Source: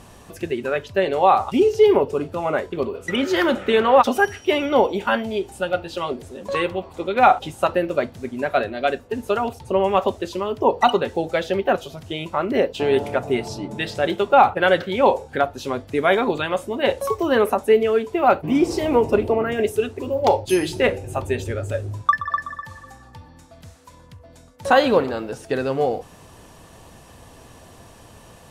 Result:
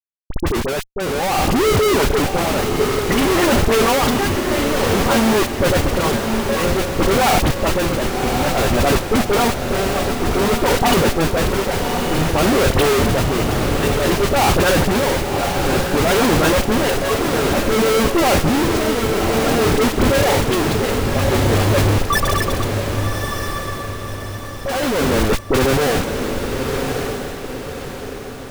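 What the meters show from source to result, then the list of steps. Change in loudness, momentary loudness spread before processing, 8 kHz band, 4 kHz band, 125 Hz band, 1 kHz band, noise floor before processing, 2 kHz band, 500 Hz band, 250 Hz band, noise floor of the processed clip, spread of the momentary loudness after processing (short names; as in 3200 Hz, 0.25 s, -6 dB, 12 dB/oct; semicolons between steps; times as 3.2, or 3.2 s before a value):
+3.5 dB, 11 LU, +16.5 dB, +9.0 dB, +13.5 dB, +1.0 dB, -47 dBFS, +5.0 dB, +2.0 dB, +6.5 dB, -29 dBFS, 9 LU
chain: Schmitt trigger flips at -28 dBFS; tremolo 0.55 Hz, depth 59%; dispersion highs, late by 42 ms, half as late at 1600 Hz; on a send: diffused feedback echo 1.122 s, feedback 46%, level -5 dB; on the sum: gain +7 dB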